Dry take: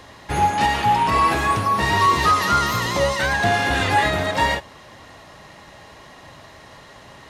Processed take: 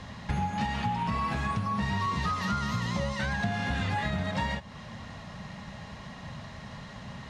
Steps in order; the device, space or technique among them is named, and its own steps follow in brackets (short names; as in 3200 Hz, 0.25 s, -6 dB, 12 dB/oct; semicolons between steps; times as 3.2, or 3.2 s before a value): jukebox (LPF 6800 Hz 12 dB/oct; resonant low shelf 260 Hz +7 dB, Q 3; compressor 4:1, threshold -27 dBFS, peak gain reduction 14.5 dB); gain -2 dB